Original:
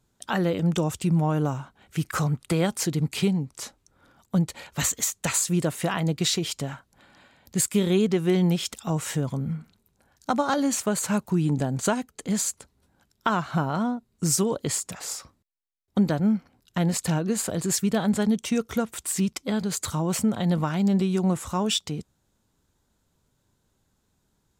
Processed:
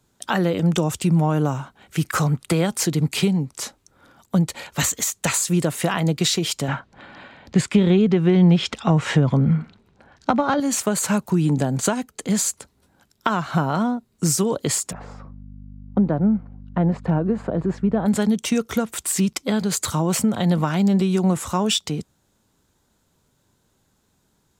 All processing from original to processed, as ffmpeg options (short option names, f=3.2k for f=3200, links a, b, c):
-filter_complex "[0:a]asettb=1/sr,asplit=3[a][b][c];[a]atrim=end=6.684[d];[b]atrim=start=6.68:end=10.6,asetpts=PTS-STARTPTS,afade=t=in:d=0.004:c=qsin,afade=t=out:st=3.916:d=0.004:c=qsin,lowpass=3.2k,acontrast=84[e];[c]atrim=start=10.596[f];[d][e]acrossfade=d=0.004:c1=hsin:c2=qsin[g];[g][f]acrossfade=d=0.004:c1=qsin:c2=hsin,asettb=1/sr,asplit=3[h][i][j];[h]atrim=end=14.924[k];[i]atrim=start=14.92:end=18.06,asetpts=PTS-STARTPTS,afade=t=in:d=0.004:c=qsin,afade=t=out:st=3.136:d=0.004:c=qsin,lowpass=1.1k,aeval=exprs='val(0)+0.00891*(sin(2*PI*50*n/s)+sin(2*PI*2*50*n/s)/2+sin(2*PI*3*50*n/s)/3+sin(2*PI*4*50*n/s)/4+sin(2*PI*5*50*n/s)/5)':c=same[l];[j]atrim=start=18.056[m];[k][l]acrossfade=d=0.004:c1=hsin:c2=qsin[n];[n][m]acrossfade=d=0.004:c1=qsin:c2=hsin,acrossover=split=160[o][p];[p]acompressor=threshold=-23dB:ratio=6[q];[o][q]amix=inputs=2:normalize=0,lowshelf=f=86:g=-7,deesser=0.4,volume=6.5dB"